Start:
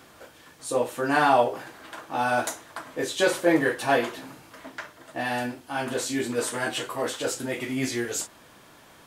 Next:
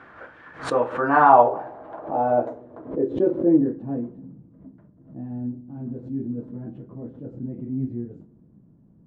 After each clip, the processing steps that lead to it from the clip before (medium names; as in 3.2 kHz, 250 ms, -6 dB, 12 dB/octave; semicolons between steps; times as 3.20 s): filtered feedback delay 65 ms, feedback 78%, low-pass 1.3 kHz, level -21.5 dB; low-pass sweep 1.6 kHz -> 190 Hz, 0.61–4.17 s; swell ahead of each attack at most 130 dB/s; trim +1.5 dB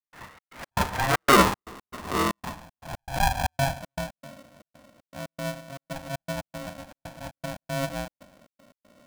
saturation -4.5 dBFS, distortion -21 dB; trance gate ".xx.x.xxx" 117 bpm -60 dB; polarity switched at an audio rate 410 Hz; trim -2 dB